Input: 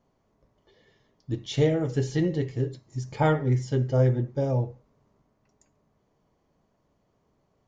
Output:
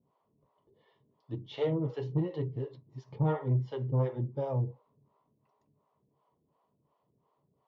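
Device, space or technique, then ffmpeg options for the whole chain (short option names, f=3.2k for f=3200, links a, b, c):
guitar amplifier with harmonic tremolo: -filter_complex "[0:a]acrossover=split=450[a][b];[a]aeval=exprs='val(0)*(1-1/2+1/2*cos(2*PI*2.8*n/s))':c=same[c];[b]aeval=exprs='val(0)*(1-1/2-1/2*cos(2*PI*2.8*n/s))':c=same[d];[c][d]amix=inputs=2:normalize=0,asoftclip=type=tanh:threshold=-21.5dB,highpass=92,equalizer=f=140:t=q:w=4:g=6,equalizer=f=440:t=q:w=4:g=3,equalizer=f=1k:t=q:w=4:g=10,equalizer=f=1.6k:t=q:w=4:g=-9,equalizer=f=2.3k:t=q:w=4:g=-5,lowpass=f=3.6k:w=0.5412,lowpass=f=3.6k:w=1.3066,volume=-2dB"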